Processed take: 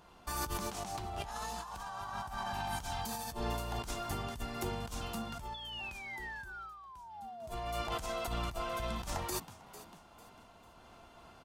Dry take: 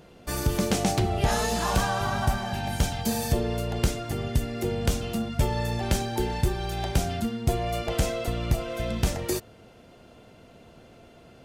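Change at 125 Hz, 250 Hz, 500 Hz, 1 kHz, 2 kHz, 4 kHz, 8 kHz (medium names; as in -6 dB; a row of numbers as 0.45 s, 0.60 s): -17.0 dB, -16.0 dB, -13.0 dB, -7.5 dB, -9.0 dB, -9.5 dB, -11.0 dB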